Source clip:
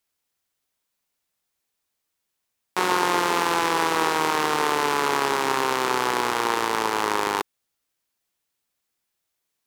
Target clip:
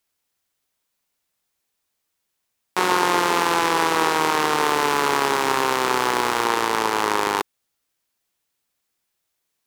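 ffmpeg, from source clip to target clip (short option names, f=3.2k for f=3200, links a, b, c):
-filter_complex "[0:a]asettb=1/sr,asplit=3[a][b][c];[a]atrim=end=4.604[d];[b]atrim=start=4.6:end=6.45,asetpts=PTS-STARTPTS,afade=t=in:d=0.004:c=qsin,afade=t=out:st=1.846:d=0.004:c=qsin,aeval=exprs='val(0)*gte(abs(val(0)),0.02)':c=same[e];[c]atrim=start=6.446[f];[d][e]acrossfade=d=0.004:c1=hsin:c2=qsin[g];[g][f]acrossfade=d=0.004:c1=qsin:c2=hsin,volume=2.5dB"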